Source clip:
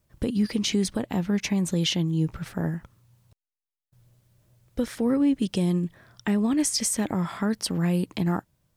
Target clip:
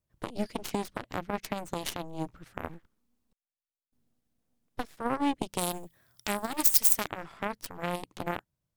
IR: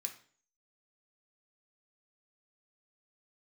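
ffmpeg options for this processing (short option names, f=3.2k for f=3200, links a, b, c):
-filter_complex "[0:a]aeval=exprs='0.188*(cos(1*acos(clip(val(0)/0.188,-1,1)))-cos(1*PI/2))+0.0841*(cos(3*acos(clip(val(0)/0.188,-1,1)))-cos(3*PI/2))+0.00944*(cos(4*acos(clip(val(0)/0.188,-1,1)))-cos(4*PI/2))+0.00299*(cos(5*acos(clip(val(0)/0.188,-1,1)))-cos(5*PI/2))+0.00376*(cos(8*acos(clip(val(0)/0.188,-1,1)))-cos(8*PI/2))':c=same,asplit=3[a][b][c];[a]afade=t=out:st=2.68:d=0.02[d];[b]aeval=exprs='abs(val(0))':c=same,afade=t=in:st=2.68:d=0.02,afade=t=out:st=4.96:d=0.02[e];[c]afade=t=in:st=4.96:d=0.02[f];[d][e][f]amix=inputs=3:normalize=0,asettb=1/sr,asplit=3[g][h][i];[g]atrim=end=5.584[j];[h]atrim=start=5.58:end=7.08,asetpts=PTS-STARTPTS,afade=t=in:d=0.004:c=qsin,afade=t=out:st=1.496:d=0.004:c=qsin,aemphasis=mode=production:type=75fm[k];[i]atrim=start=7.076[l];[j][k]acrossfade=d=0.004:c1=hsin:c2=qsin[m];[m][l]acrossfade=d=0.004:c1=qsin:c2=hsin,volume=-3dB"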